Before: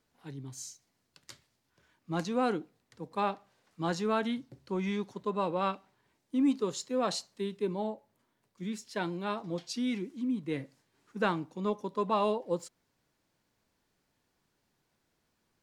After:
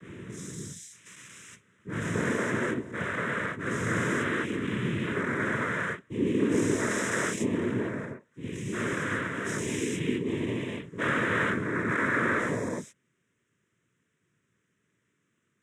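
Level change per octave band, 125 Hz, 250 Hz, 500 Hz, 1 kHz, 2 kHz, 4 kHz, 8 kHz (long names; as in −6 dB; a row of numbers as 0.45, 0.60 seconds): +8.5, +3.5, +2.0, 0.0, +14.5, +1.5, +7.5 decibels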